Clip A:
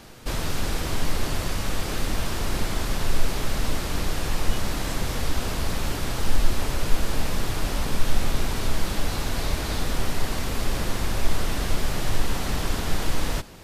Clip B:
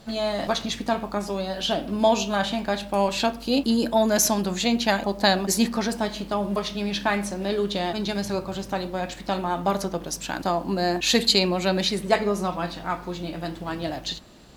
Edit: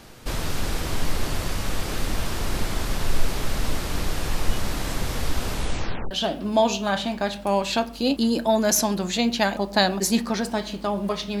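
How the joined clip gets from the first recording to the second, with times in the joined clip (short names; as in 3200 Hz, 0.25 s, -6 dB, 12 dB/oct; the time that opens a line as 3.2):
clip A
5.51 tape stop 0.60 s
6.11 switch to clip B from 1.58 s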